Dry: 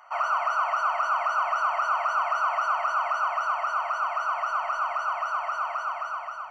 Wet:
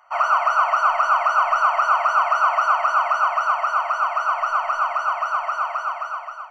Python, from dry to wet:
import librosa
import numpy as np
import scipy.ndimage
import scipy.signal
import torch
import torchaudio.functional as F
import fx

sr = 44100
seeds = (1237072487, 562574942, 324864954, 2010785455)

y = fx.low_shelf(x, sr, hz=180.0, db=6.5)
y = fx.hum_notches(y, sr, base_hz=60, count=6)
y = fx.upward_expand(y, sr, threshold_db=-45.0, expansion=1.5)
y = F.gain(torch.from_numpy(y), 8.0).numpy()